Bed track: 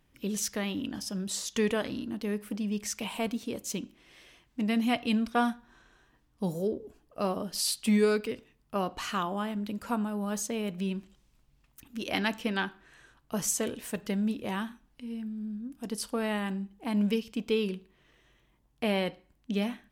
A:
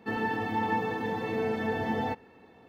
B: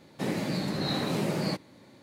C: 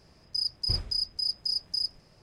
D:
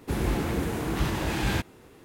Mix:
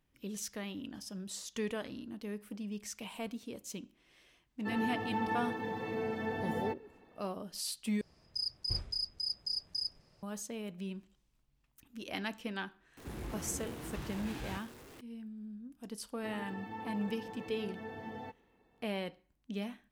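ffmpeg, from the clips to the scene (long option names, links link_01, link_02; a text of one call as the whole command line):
ffmpeg -i bed.wav -i cue0.wav -i cue1.wav -i cue2.wav -i cue3.wav -filter_complex "[1:a]asplit=2[link_01][link_02];[0:a]volume=-9dB[link_03];[4:a]aeval=exprs='val(0)+0.5*0.0266*sgn(val(0))':channel_layout=same[link_04];[link_03]asplit=2[link_05][link_06];[link_05]atrim=end=8.014[link_07];[3:a]atrim=end=2.22,asetpts=PTS-STARTPTS,volume=-7dB[link_08];[link_06]atrim=start=10.226[link_09];[link_01]atrim=end=2.68,asetpts=PTS-STARTPTS,volume=-6.5dB,afade=type=in:duration=0.004:curve=hsin,afade=type=out:start_time=2.676:duration=0.004:curve=hsin,adelay=4590[link_10];[link_04]atrim=end=2.04,asetpts=PTS-STARTPTS,volume=-17.5dB,afade=type=in:duration=0.004:curve=hsin,afade=type=out:start_time=2.036:duration=0.004:curve=hsin,adelay=12970[link_11];[link_02]atrim=end=2.68,asetpts=PTS-STARTPTS,volume=-14.5dB,afade=type=in:duration=0.004:curve=hsin,afade=type=out:start_time=2.676:duration=0.004:curve=hsin,adelay=16170[link_12];[link_07][link_08]acrossfade=duration=0.004:curve1=hsin:curve2=hsin[link_13];[link_13][link_09]acrossfade=duration=0.004:curve1=hsin:curve2=hsin[link_14];[link_14][link_10][link_11][link_12]amix=inputs=4:normalize=0" out.wav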